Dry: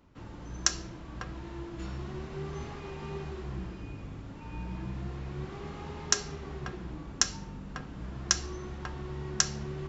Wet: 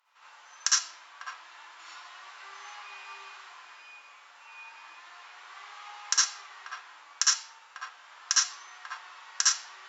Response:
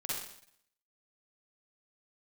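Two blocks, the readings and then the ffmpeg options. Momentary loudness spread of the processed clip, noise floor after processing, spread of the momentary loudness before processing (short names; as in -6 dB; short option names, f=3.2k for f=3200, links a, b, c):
20 LU, -54 dBFS, 13 LU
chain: -filter_complex "[0:a]highpass=f=970:w=0.5412,highpass=f=970:w=1.3066[a];[1:a]atrim=start_sample=2205,atrim=end_sample=3969,asetrate=34839,aresample=44100[b];[a][b]afir=irnorm=-1:irlink=0,volume=1.5dB"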